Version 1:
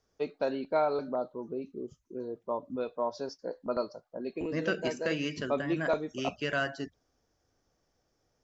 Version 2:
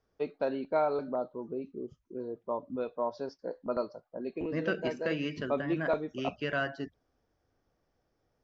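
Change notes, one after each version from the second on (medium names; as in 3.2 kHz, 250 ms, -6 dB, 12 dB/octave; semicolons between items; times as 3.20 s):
master: add distance through air 180 m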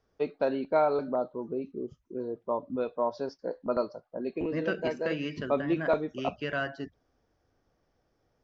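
first voice +3.5 dB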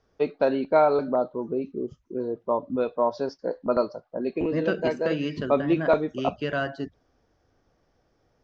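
first voice +5.5 dB; second voice: remove rippled Chebyshev low-pass 7.5 kHz, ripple 6 dB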